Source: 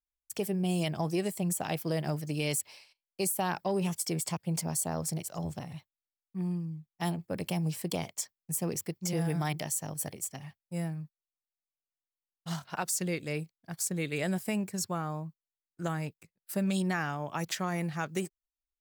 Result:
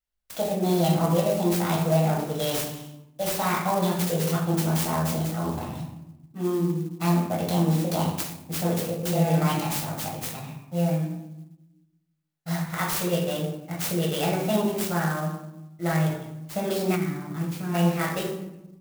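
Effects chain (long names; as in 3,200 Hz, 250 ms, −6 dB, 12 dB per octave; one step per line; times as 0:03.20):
high-shelf EQ 4,400 Hz +6.5 dB
formants moved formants +5 semitones
high-shelf EQ 9,200 Hz −8.5 dB
convolution reverb RT60 0.90 s, pre-delay 6 ms, DRR −4 dB
gain on a spectral selection 0:16.96–0:17.75, 410–11,000 Hz −13 dB
converter with an unsteady clock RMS 0.037 ms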